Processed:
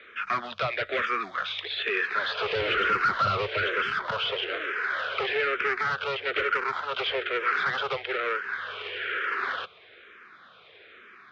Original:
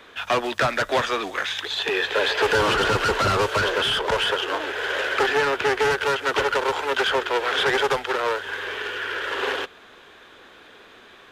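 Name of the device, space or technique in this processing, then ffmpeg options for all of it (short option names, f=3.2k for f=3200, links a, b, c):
barber-pole phaser into a guitar amplifier: -filter_complex "[0:a]asplit=2[a][b];[b]afreqshift=-1.1[c];[a][c]amix=inputs=2:normalize=1,asoftclip=type=tanh:threshold=-17dB,highpass=84,equalizer=f=280:t=q:w=4:g=-9,equalizer=f=870:t=q:w=4:g=-10,equalizer=f=1.3k:t=q:w=4:g=8,equalizer=f=2.2k:t=q:w=4:g=8,lowpass=f=4.4k:w=0.5412,lowpass=f=4.4k:w=1.3066,volume=-3dB"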